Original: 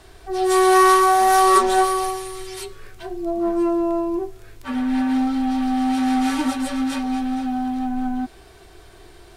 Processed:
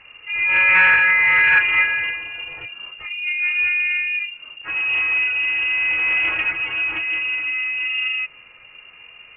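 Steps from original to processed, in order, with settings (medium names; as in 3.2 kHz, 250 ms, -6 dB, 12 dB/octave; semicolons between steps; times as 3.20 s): frequency inversion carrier 2.8 kHz; loudspeaker Doppler distortion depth 0.11 ms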